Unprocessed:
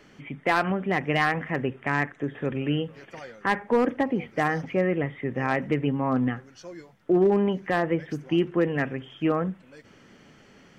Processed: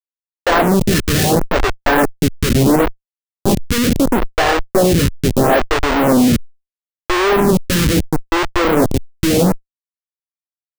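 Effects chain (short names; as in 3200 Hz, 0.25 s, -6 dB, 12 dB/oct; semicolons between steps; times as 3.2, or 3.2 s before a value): nonlinear frequency compression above 1700 Hz 4:1; HPF 170 Hz 24 dB/oct; dynamic EQ 510 Hz, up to +6 dB, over -36 dBFS, Q 1.3; AGC gain up to 14 dB; in parallel at -9.5 dB: sample-and-hold 38×; on the sum: low-pass opened by the level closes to 740 Hz, open at -9 dBFS; on a send at -12 dB: reverb RT60 0.35 s, pre-delay 5 ms; on the sum: Schmitt trigger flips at -16.5 dBFS; photocell phaser 0.74 Hz; gain +5.5 dB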